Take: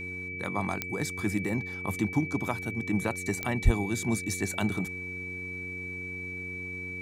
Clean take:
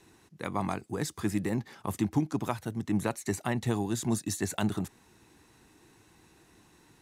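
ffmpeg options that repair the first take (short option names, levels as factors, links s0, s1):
-filter_complex "[0:a]adeclick=t=4,bandreject=f=91.6:t=h:w=4,bandreject=f=183.2:t=h:w=4,bandreject=f=274.8:t=h:w=4,bandreject=f=366.4:t=h:w=4,bandreject=f=458:t=h:w=4,bandreject=f=2300:w=30,asplit=3[s0][s1][s2];[s0]afade=t=out:st=3.64:d=0.02[s3];[s1]highpass=f=140:w=0.5412,highpass=f=140:w=1.3066,afade=t=in:st=3.64:d=0.02,afade=t=out:st=3.76:d=0.02[s4];[s2]afade=t=in:st=3.76:d=0.02[s5];[s3][s4][s5]amix=inputs=3:normalize=0"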